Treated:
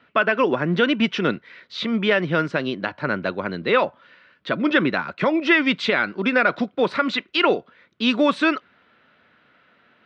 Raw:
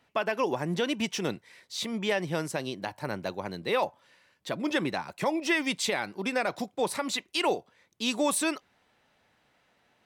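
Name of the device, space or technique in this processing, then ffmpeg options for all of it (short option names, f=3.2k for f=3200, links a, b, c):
guitar cabinet: -af "highpass=84,equalizer=f=110:t=q:w=4:g=-5,equalizer=f=240:t=q:w=4:g=3,equalizer=f=820:t=q:w=4:g=-9,equalizer=f=1.4k:t=q:w=4:g=9,lowpass=f=3.7k:w=0.5412,lowpass=f=3.7k:w=1.3066,volume=9dB"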